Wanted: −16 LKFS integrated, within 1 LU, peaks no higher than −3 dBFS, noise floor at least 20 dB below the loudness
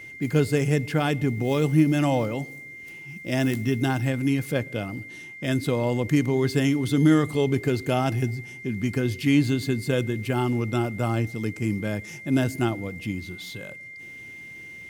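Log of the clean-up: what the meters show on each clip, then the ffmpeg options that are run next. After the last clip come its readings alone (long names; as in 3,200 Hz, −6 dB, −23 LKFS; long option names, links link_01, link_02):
interfering tone 2,100 Hz; level of the tone −39 dBFS; integrated loudness −24.5 LKFS; sample peak −7.0 dBFS; target loudness −16.0 LKFS
→ -af "bandreject=frequency=2100:width=30"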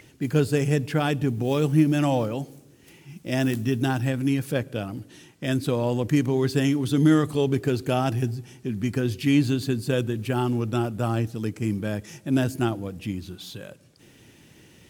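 interfering tone none found; integrated loudness −25.0 LKFS; sample peak −7.5 dBFS; target loudness −16.0 LKFS
→ -af "volume=9dB,alimiter=limit=-3dB:level=0:latency=1"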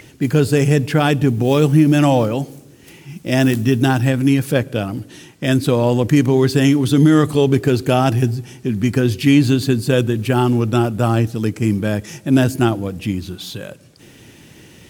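integrated loudness −16.5 LKFS; sample peak −3.0 dBFS; background noise floor −45 dBFS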